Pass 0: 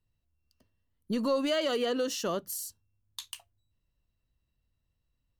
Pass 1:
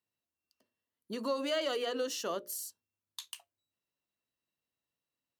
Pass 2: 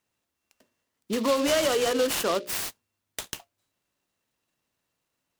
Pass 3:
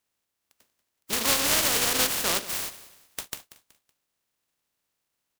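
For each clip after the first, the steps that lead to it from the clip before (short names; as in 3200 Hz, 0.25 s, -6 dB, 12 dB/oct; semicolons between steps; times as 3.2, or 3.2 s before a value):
HPF 300 Hz 12 dB/oct; notches 60/120/180/240/300/360/420/480/540/600 Hz; gain -3 dB
in parallel at -1 dB: limiter -30 dBFS, peak gain reduction 9.5 dB; on the sum: noise-modulated delay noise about 3300 Hz, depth 0.052 ms; gain +6 dB
spectral contrast lowered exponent 0.31; feedback echo 0.187 s, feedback 35%, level -16 dB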